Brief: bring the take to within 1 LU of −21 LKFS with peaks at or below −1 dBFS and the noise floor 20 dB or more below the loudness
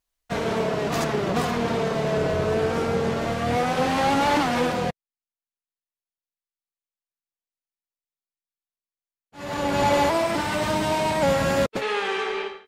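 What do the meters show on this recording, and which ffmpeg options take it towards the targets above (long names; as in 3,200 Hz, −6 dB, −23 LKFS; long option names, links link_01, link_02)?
integrated loudness −23.5 LKFS; sample peak −10.5 dBFS; target loudness −21.0 LKFS
→ -af "volume=2.5dB"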